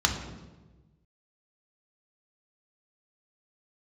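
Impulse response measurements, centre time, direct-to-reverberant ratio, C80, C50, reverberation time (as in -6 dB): 27 ms, 2.0 dB, 9.0 dB, 7.0 dB, 1.2 s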